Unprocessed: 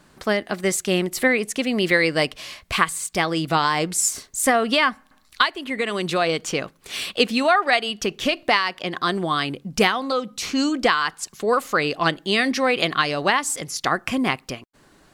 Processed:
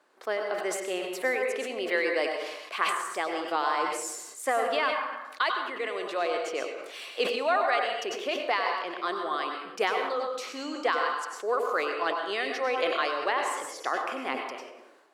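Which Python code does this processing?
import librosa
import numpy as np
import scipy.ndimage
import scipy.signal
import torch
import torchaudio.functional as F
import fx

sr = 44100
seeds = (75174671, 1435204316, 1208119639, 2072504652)

y = scipy.signal.sosfilt(scipy.signal.butter(4, 380.0, 'highpass', fs=sr, output='sos'), x)
y = fx.high_shelf(y, sr, hz=2700.0, db=-11.0)
y = fx.rev_plate(y, sr, seeds[0], rt60_s=0.78, hf_ratio=0.7, predelay_ms=85, drr_db=3.0)
y = fx.sustainer(y, sr, db_per_s=47.0)
y = y * librosa.db_to_amplitude(-7.0)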